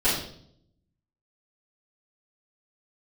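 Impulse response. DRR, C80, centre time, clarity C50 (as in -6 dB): -12.0 dB, 7.0 dB, 45 ms, 3.0 dB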